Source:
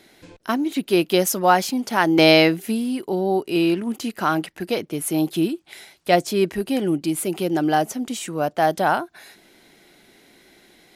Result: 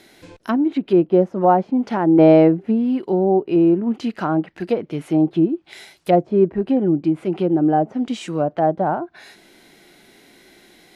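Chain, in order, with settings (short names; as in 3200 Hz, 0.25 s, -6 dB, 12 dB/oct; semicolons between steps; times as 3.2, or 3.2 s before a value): treble ducked by the level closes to 760 Hz, closed at -17.5 dBFS; harmonic-percussive split harmonic +6 dB; gain -1 dB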